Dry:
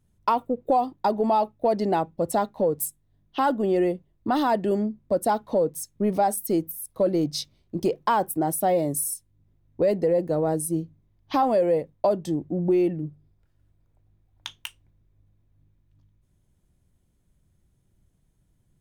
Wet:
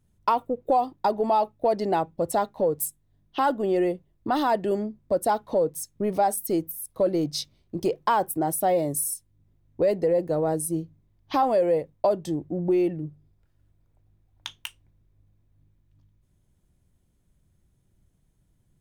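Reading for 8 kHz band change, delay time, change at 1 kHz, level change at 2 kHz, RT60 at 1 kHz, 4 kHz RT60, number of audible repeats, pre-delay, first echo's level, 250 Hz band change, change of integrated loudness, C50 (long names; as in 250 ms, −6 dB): 0.0 dB, no echo audible, 0.0 dB, 0.0 dB, no reverb audible, no reverb audible, no echo audible, no reverb audible, no echo audible, −2.5 dB, −0.5 dB, no reverb audible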